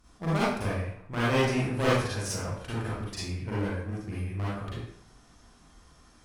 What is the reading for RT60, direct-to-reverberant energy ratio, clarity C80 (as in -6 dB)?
0.70 s, -9.5 dB, 2.0 dB